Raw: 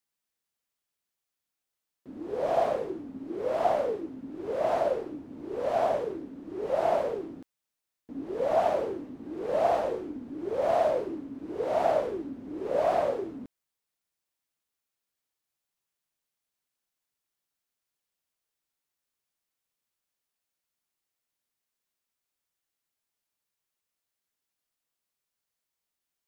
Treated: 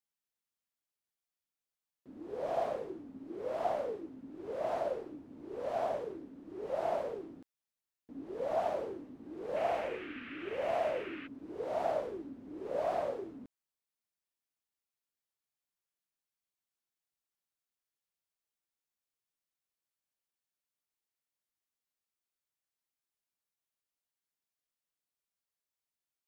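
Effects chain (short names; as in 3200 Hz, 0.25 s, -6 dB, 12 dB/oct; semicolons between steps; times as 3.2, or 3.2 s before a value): 9.55–11.26 band noise 1200–2800 Hz -41 dBFS; gain -8 dB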